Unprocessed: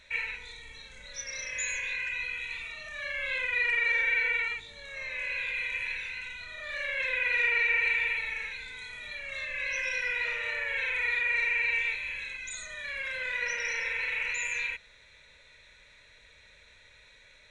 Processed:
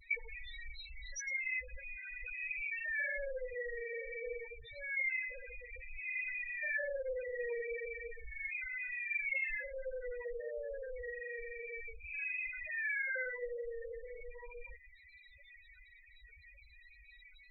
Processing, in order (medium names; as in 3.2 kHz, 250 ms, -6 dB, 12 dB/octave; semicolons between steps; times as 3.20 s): low-pass that closes with the level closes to 690 Hz, closed at -29 dBFS; loudest bins only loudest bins 4; trim +6.5 dB